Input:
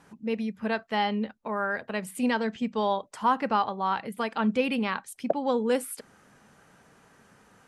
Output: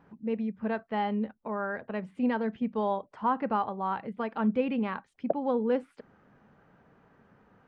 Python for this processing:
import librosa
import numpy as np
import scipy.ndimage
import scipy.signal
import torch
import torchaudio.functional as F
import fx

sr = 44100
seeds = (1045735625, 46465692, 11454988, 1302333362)

y = fx.spacing_loss(x, sr, db_at_10k=40)